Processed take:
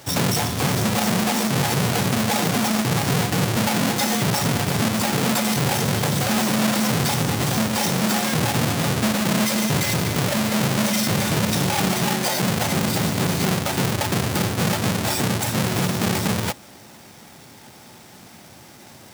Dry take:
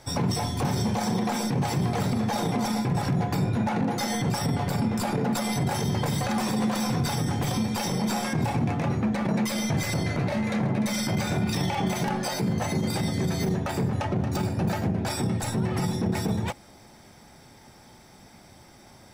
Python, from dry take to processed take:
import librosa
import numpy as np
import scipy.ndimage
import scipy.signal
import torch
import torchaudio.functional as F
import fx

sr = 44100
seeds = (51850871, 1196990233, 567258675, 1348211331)

y = fx.halfwave_hold(x, sr)
y = scipy.signal.sosfilt(scipy.signal.butter(2, 100.0, 'highpass', fs=sr, output='sos'), y)
y = fx.high_shelf(y, sr, hz=2200.0, db=7.5)